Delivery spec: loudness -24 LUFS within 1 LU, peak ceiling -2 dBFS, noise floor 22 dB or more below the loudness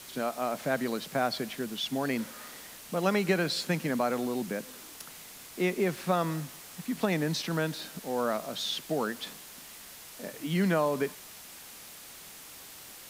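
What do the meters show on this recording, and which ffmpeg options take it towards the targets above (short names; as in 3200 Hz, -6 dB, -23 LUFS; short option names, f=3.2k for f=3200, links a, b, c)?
noise floor -48 dBFS; noise floor target -53 dBFS; loudness -31.0 LUFS; peak -14.0 dBFS; loudness target -24.0 LUFS
-> -af "afftdn=nr=6:nf=-48"
-af "volume=7dB"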